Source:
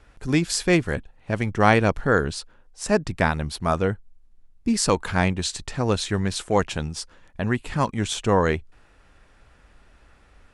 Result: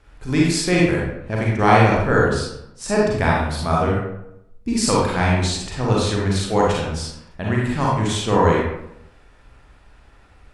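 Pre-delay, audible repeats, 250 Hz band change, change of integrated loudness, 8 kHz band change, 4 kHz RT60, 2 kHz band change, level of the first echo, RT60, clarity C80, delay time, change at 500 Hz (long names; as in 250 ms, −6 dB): 34 ms, no echo audible, +4.0 dB, +4.0 dB, +2.0 dB, 0.50 s, +3.0 dB, no echo audible, 0.80 s, 3.0 dB, no echo audible, +4.0 dB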